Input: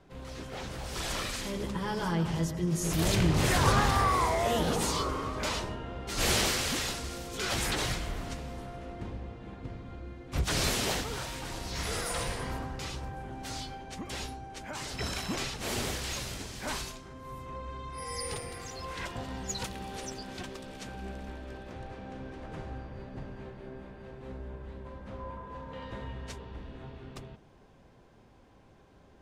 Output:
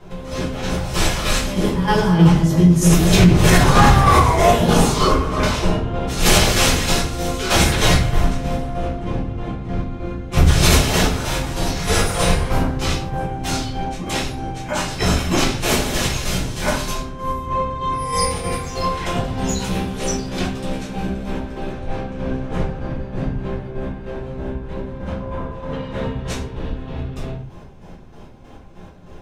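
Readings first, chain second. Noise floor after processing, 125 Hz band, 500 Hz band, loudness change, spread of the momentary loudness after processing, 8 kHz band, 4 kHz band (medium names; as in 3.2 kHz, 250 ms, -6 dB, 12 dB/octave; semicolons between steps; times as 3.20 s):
-38 dBFS, +16.5 dB, +14.5 dB, +14.0 dB, 16 LU, +12.0 dB, +12.0 dB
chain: band-stop 4.6 kHz, Q 28; in parallel at -12 dB: saturation -28 dBFS, distortion -10 dB; on the sum: square tremolo 3.2 Hz, depth 60%, duty 40%; simulated room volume 51 m³, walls mixed, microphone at 1.4 m; loudness maximiser +9 dB; trim -1 dB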